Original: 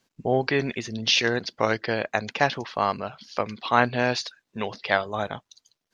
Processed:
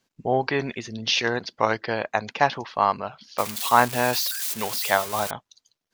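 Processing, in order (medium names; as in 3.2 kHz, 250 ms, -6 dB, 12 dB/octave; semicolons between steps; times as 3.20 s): 3.38–5.31 s: zero-crossing glitches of -17.5 dBFS; dynamic bell 940 Hz, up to +8 dB, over -37 dBFS, Q 1.6; trim -2 dB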